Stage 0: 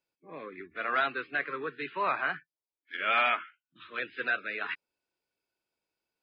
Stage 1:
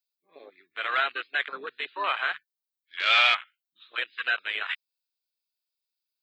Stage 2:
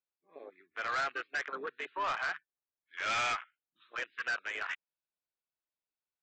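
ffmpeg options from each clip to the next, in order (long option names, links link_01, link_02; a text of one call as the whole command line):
ffmpeg -i in.wav -af "aemphasis=mode=production:type=riaa,afwtdn=0.02,equalizer=frequency=4000:width=1.6:gain=14" out.wav
ffmpeg -i in.wav -af "lowpass=1700,aresample=16000,asoftclip=type=tanh:threshold=-28.5dB,aresample=44100" out.wav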